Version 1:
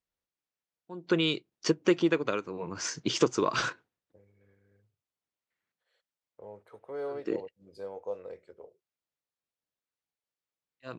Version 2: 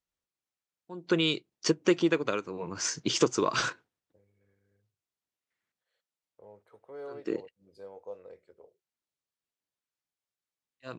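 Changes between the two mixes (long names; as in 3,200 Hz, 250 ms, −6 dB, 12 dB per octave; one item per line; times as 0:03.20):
first voice: add high-shelf EQ 7,800 Hz +10 dB
second voice −6.0 dB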